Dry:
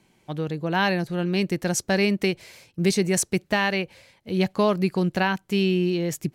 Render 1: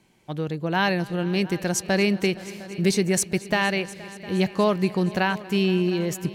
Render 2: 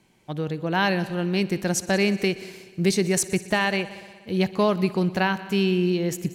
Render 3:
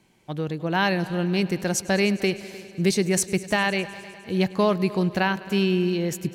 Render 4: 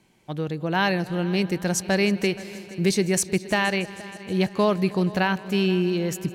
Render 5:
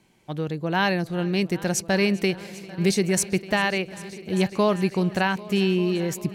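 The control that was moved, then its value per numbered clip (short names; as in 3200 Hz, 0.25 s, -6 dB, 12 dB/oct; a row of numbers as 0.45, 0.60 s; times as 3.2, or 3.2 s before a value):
multi-head echo, time: 236, 61, 102, 158, 397 ms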